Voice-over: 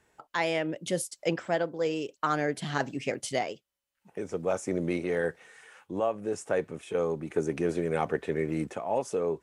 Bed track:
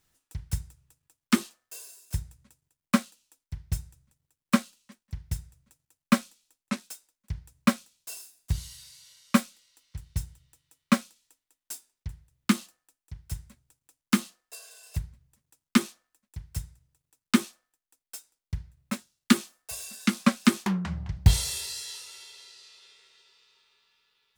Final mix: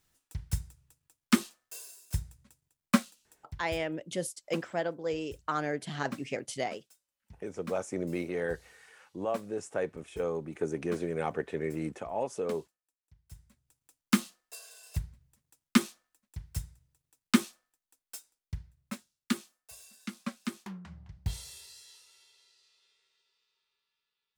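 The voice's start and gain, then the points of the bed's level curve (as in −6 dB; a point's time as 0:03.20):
3.25 s, −4.0 dB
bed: 0:03.40 −1.5 dB
0:03.92 −20 dB
0:13.16 −20 dB
0:13.82 −2 dB
0:18.07 −2 dB
0:20.09 −15.5 dB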